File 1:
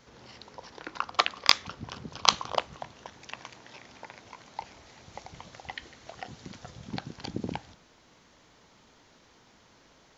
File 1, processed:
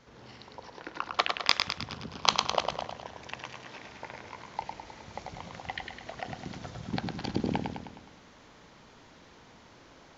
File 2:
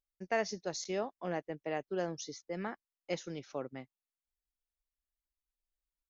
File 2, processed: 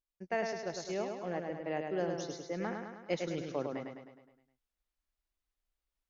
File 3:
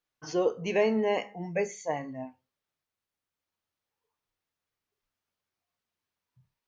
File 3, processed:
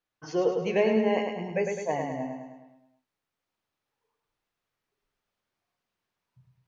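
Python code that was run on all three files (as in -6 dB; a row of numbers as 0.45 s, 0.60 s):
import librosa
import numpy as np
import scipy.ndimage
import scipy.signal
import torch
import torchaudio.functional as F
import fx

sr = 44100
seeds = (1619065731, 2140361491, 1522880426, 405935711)

p1 = x + fx.echo_feedback(x, sr, ms=104, feedback_pct=54, wet_db=-5, dry=0)
p2 = fx.dynamic_eq(p1, sr, hz=1200.0, q=2.9, threshold_db=-48.0, ratio=4.0, max_db=-3)
p3 = fx.rider(p2, sr, range_db=4, speed_s=2.0)
y = fx.high_shelf(p3, sr, hz=5500.0, db=-9.5)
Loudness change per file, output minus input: -4.0 LU, +1.0 LU, +2.0 LU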